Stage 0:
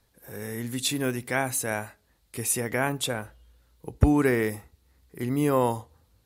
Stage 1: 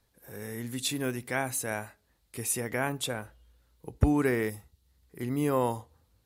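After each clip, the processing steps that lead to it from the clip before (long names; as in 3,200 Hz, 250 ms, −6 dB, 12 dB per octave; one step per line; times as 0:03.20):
gain on a spectral selection 0:04.50–0:05.02, 200–2,700 Hz −6 dB
level −4 dB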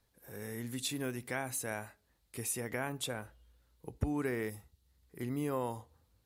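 downward compressor 2 to 1, threshold −31 dBFS, peak gain reduction 8.5 dB
level −3.5 dB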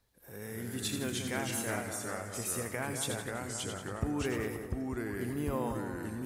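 echo with a time of its own for lows and highs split 1,700 Hz, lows 182 ms, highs 81 ms, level −7 dB
delay with pitch and tempo change per echo 202 ms, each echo −2 semitones, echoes 2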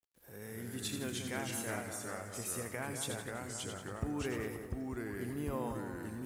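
bit reduction 11 bits
level −4 dB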